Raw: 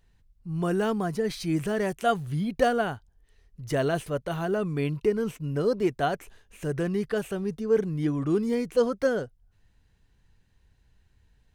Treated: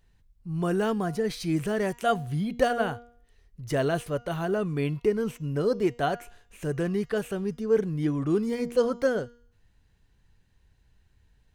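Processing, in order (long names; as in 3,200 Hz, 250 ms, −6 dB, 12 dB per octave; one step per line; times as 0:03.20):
hum removal 238.1 Hz, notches 32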